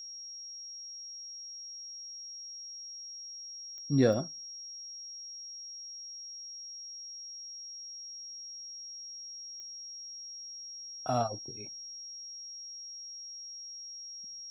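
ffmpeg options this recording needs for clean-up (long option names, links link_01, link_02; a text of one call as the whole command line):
ffmpeg -i in.wav -af "adeclick=threshold=4,bandreject=frequency=5600:width=30" out.wav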